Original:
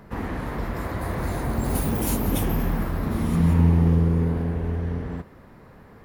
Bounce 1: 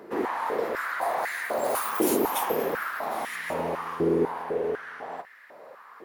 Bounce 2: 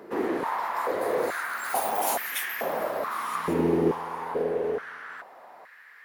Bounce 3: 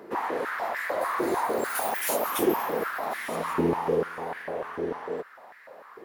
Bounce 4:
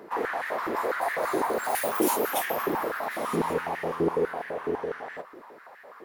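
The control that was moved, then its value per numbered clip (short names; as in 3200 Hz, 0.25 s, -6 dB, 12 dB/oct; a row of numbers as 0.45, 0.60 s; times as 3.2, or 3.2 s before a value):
stepped high-pass, rate: 4, 2.3, 6.7, 12 Hz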